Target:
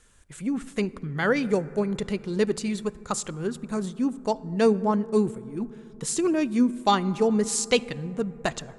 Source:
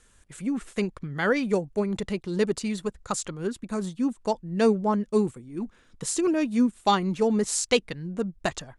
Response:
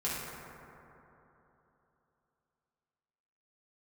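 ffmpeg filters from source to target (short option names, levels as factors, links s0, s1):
-filter_complex "[0:a]asplit=2[s0][s1];[1:a]atrim=start_sample=2205,lowshelf=f=220:g=6.5[s2];[s1][s2]afir=irnorm=-1:irlink=0,volume=0.0708[s3];[s0][s3]amix=inputs=2:normalize=0"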